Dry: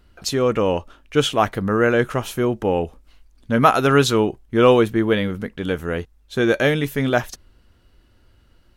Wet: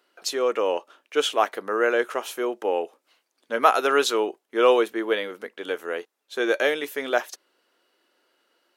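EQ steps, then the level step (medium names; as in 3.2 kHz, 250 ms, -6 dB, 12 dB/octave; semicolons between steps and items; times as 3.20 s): high-pass 370 Hz 24 dB/octave; -3.0 dB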